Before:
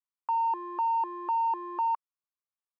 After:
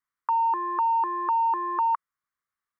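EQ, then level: bass shelf 330 Hz +7.5 dB; high-order bell 1.5 kHz +13.5 dB 1.2 oct; band-stop 2.6 kHz, Q 18; 0.0 dB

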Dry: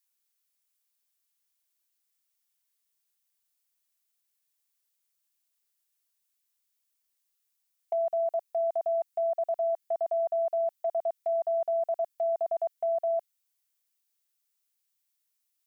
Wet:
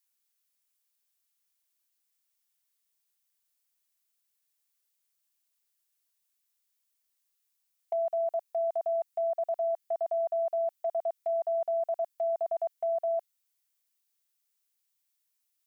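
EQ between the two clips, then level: bass shelf 390 Hz -5.5 dB; 0.0 dB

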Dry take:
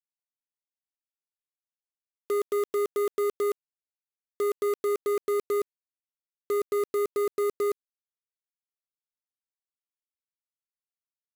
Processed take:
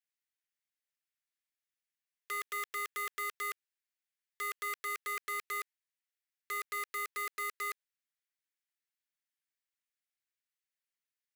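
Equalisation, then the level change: resonant high-pass 1.8 kHz, resonance Q 2.2; 0.0 dB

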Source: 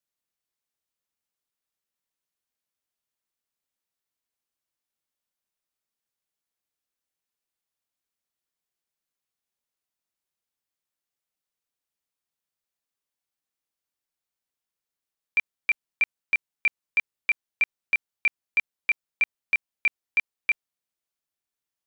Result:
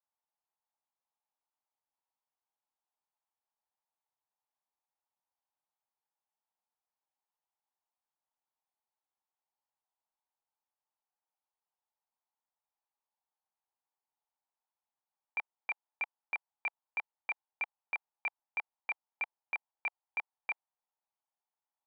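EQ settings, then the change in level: resonant low-pass 860 Hz, resonance Q 4.9; differentiator; +13.0 dB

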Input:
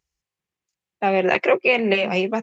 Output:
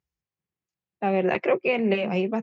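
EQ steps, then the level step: high-pass 89 Hz; low-pass 2.8 kHz 6 dB/octave; bass shelf 280 Hz +10 dB; -6.5 dB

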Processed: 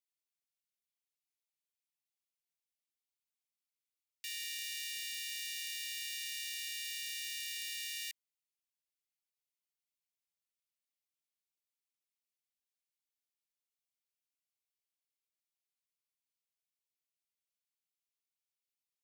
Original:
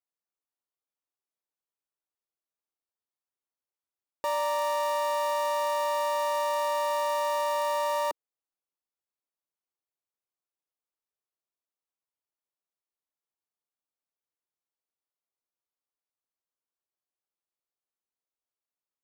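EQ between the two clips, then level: steep high-pass 2 kHz 72 dB/octave; 0.0 dB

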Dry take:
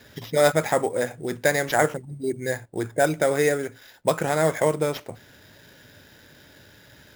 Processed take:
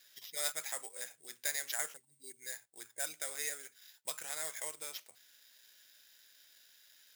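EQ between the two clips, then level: low-pass 3.3 kHz 6 dB/octave; differentiator; treble shelf 2.1 kHz +11.5 dB; -8.0 dB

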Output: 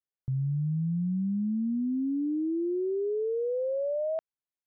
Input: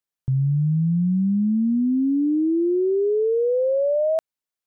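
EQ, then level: distance through air 290 m; -8.5 dB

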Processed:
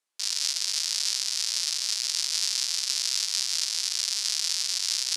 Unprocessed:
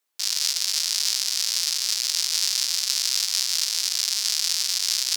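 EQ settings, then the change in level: high-pass 120 Hz 6 dB/octave; low-pass 11 kHz 24 dB/octave; -3.5 dB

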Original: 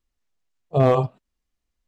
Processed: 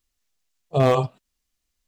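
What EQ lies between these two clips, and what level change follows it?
treble shelf 2.4 kHz +11.5 dB; -1.5 dB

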